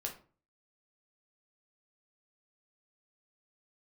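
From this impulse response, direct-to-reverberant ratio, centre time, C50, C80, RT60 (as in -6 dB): 0.5 dB, 16 ms, 10.0 dB, 16.0 dB, 0.40 s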